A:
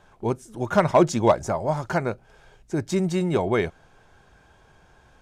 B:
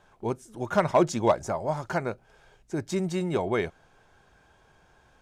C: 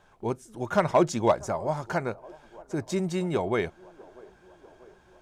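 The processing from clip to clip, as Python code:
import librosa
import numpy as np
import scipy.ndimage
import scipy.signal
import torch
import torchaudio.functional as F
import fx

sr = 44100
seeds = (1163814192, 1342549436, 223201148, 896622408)

y1 = fx.low_shelf(x, sr, hz=200.0, db=-3.5)
y1 = F.gain(torch.from_numpy(y1), -3.5).numpy()
y2 = fx.echo_wet_bandpass(y1, sr, ms=643, feedback_pct=65, hz=560.0, wet_db=-22.0)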